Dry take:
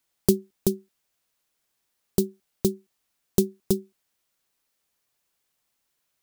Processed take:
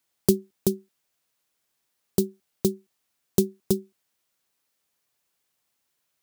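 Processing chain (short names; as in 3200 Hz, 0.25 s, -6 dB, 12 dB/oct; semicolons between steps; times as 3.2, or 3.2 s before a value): HPF 66 Hz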